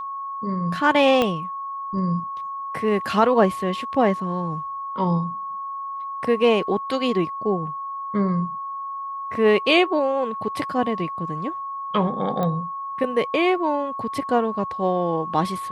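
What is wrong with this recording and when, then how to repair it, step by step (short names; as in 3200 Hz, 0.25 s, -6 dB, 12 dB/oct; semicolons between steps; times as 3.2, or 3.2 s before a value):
tone 1100 Hz -28 dBFS
1.22 pop -8 dBFS
12.43 pop -14 dBFS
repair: de-click; notch 1100 Hz, Q 30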